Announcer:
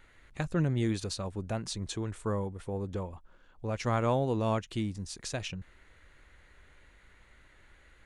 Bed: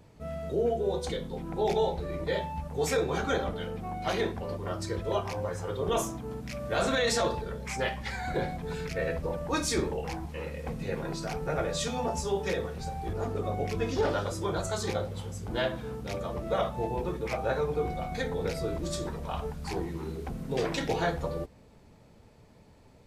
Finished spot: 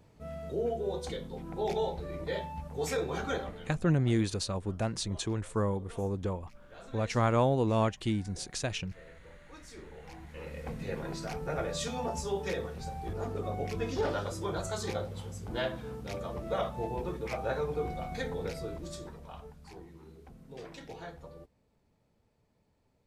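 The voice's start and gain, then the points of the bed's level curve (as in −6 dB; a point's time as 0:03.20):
3.30 s, +2.0 dB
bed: 0:03.33 −4.5 dB
0:04.11 −23 dB
0:09.66 −23 dB
0:10.57 −3.5 dB
0:18.30 −3.5 dB
0:19.76 −16 dB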